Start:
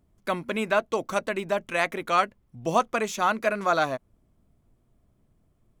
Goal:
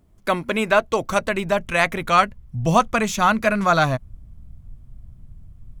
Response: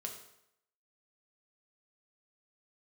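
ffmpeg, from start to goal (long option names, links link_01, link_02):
-af "asubboost=boost=11.5:cutoff=120,volume=7dB"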